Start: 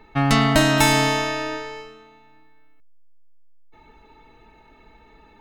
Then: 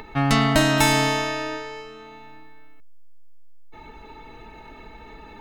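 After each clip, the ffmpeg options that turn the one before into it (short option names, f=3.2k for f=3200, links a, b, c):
-af "acompressor=mode=upward:threshold=-30dB:ratio=2.5,volume=-1.5dB"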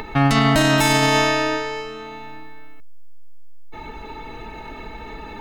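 -af "alimiter=limit=-15dB:level=0:latency=1:release=77,volume=8dB"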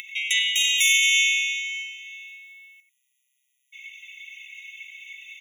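-filter_complex "[0:a]acrossover=split=1700[a][b];[a]adelay=90[c];[c][b]amix=inputs=2:normalize=0,afftfilt=real='re*eq(mod(floor(b*sr/1024/1900),2),1)':imag='im*eq(mod(floor(b*sr/1024/1900),2),1)':win_size=1024:overlap=0.75,volume=6dB"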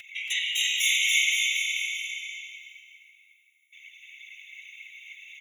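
-af "afftfilt=real='hypot(re,im)*cos(2*PI*random(0))':imag='hypot(re,im)*sin(2*PI*random(1))':win_size=512:overlap=0.75,aecho=1:1:280|532|758.8|962.9|1147:0.631|0.398|0.251|0.158|0.1"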